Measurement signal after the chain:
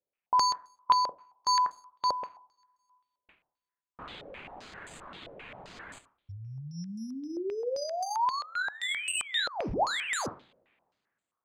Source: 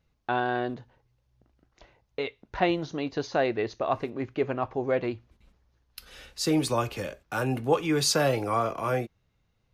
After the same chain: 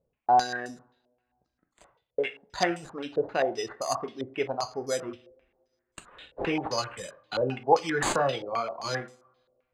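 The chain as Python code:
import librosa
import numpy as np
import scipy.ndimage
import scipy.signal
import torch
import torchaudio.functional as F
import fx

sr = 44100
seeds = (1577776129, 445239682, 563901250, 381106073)

y = fx.dereverb_blind(x, sr, rt60_s=1.6)
y = fx.low_shelf(y, sr, hz=110.0, db=-10.5)
y = fx.rev_double_slope(y, sr, seeds[0], early_s=0.41, late_s=2.0, knee_db=-28, drr_db=8.0)
y = np.repeat(y[::8], 8)[:len(y)]
y = fx.filter_held_lowpass(y, sr, hz=7.6, low_hz=550.0, high_hz=7800.0)
y = y * librosa.db_to_amplitude(-3.0)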